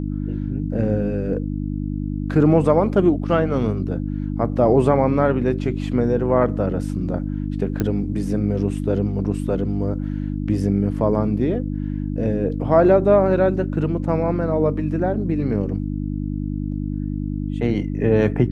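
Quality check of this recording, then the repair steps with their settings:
hum 50 Hz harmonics 6 -25 dBFS
7.8 pop -10 dBFS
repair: de-click; de-hum 50 Hz, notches 6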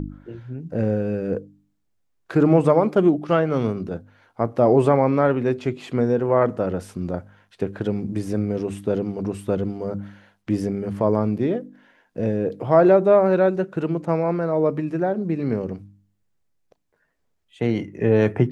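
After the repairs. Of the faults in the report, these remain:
none

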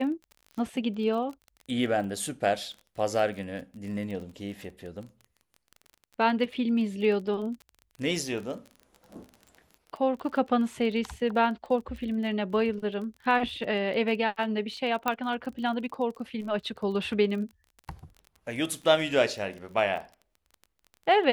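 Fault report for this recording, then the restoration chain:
crackle 27/s -37 dBFS
15.08 pop -12 dBFS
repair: de-click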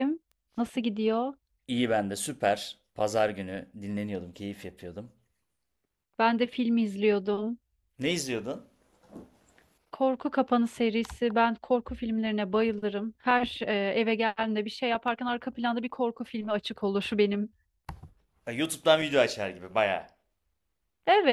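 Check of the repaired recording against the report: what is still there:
15.08 pop

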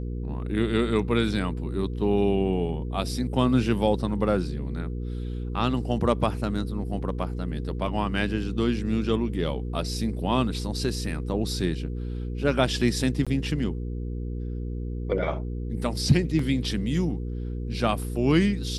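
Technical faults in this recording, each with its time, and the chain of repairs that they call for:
hum 60 Hz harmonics 8 -31 dBFS
13.25–13.27 gap 16 ms
16.39 gap 3 ms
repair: de-hum 60 Hz, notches 8; interpolate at 13.25, 16 ms; interpolate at 16.39, 3 ms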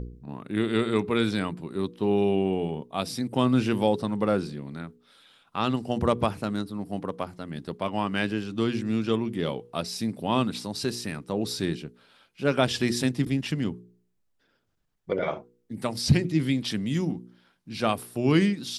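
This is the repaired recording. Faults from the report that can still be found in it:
none

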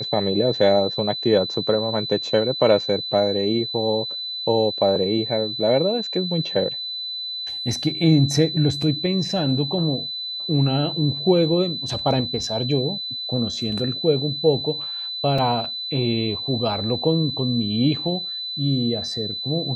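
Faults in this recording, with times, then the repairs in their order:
tone 4000 Hz -27 dBFS
15.38 gap 4.5 ms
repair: notch 4000 Hz, Q 30; interpolate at 15.38, 4.5 ms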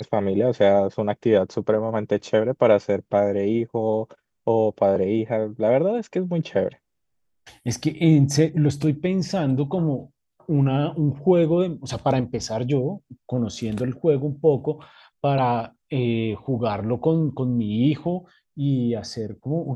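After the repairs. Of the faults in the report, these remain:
none

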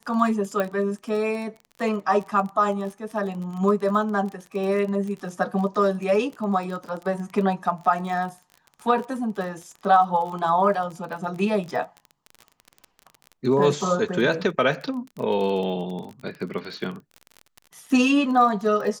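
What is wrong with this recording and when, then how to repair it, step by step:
crackle 30/s -31 dBFS
0.6 pop -13 dBFS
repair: de-click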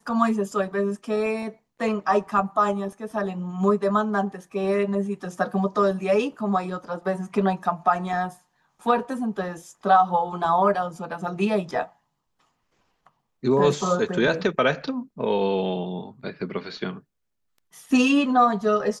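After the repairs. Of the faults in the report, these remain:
0.6 pop

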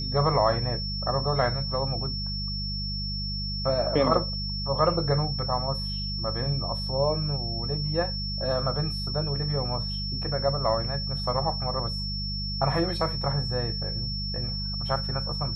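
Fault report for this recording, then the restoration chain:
hum 50 Hz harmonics 4 -33 dBFS
tone 5400 Hz -32 dBFS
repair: de-hum 50 Hz, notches 4; notch 5400 Hz, Q 30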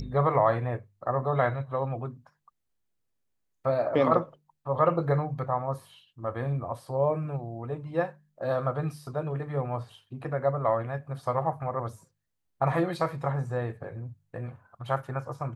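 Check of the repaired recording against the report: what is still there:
none

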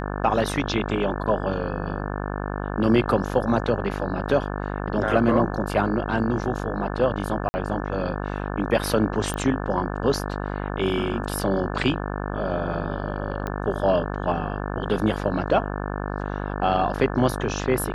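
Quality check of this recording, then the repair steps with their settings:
buzz 50 Hz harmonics 35 -29 dBFS
7.49–7.54 gap 50 ms
9.34 pop -15 dBFS
13.47 pop -17 dBFS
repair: de-click; de-hum 50 Hz, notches 35; interpolate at 7.49, 50 ms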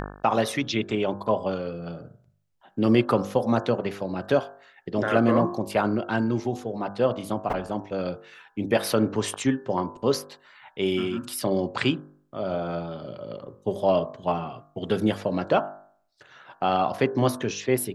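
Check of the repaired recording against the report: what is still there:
none

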